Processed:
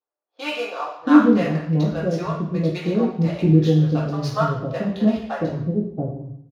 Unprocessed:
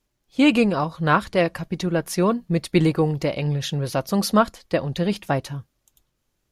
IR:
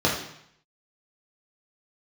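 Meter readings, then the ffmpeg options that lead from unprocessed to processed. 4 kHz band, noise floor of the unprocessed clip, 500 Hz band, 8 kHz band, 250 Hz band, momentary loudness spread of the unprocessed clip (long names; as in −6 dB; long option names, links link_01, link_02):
−5.0 dB, −74 dBFS, −1.0 dB, below −10 dB, +3.5 dB, 7 LU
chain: -filter_complex "[0:a]adynamicsmooth=sensitivity=7.5:basefreq=1000,acrossover=split=570[link_01][link_02];[link_01]adelay=680[link_03];[link_03][link_02]amix=inputs=2:normalize=0[link_04];[1:a]atrim=start_sample=2205[link_05];[link_04][link_05]afir=irnorm=-1:irlink=0,volume=-18dB"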